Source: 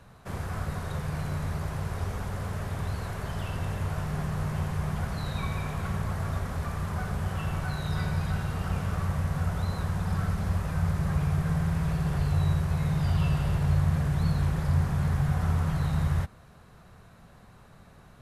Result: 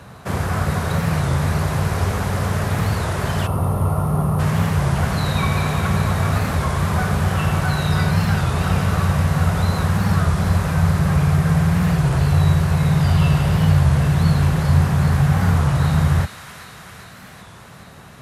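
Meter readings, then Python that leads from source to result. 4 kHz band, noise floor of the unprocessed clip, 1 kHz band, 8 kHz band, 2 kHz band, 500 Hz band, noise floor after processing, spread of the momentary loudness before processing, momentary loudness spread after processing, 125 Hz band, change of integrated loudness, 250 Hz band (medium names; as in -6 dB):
+13.5 dB, -53 dBFS, +12.5 dB, +13.5 dB, +13.0 dB, +12.5 dB, -41 dBFS, 7 LU, 5 LU, +10.5 dB, +11.0 dB, +12.0 dB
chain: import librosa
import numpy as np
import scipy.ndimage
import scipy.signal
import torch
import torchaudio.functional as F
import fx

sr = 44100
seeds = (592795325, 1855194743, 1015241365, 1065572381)

p1 = scipy.signal.sosfilt(scipy.signal.butter(2, 76.0, 'highpass', fs=sr, output='sos'), x)
p2 = fx.echo_wet_highpass(p1, sr, ms=396, feedback_pct=72, hz=1700.0, wet_db=-7.5)
p3 = fx.rider(p2, sr, range_db=3, speed_s=0.5)
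p4 = p2 + (p3 * librosa.db_to_amplitude(-3.0))
p5 = fx.spec_box(p4, sr, start_s=3.47, length_s=0.92, low_hz=1400.0, high_hz=8600.0, gain_db=-16)
p6 = fx.record_warp(p5, sr, rpm=33.33, depth_cents=160.0)
y = p6 * librosa.db_to_amplitude(7.5)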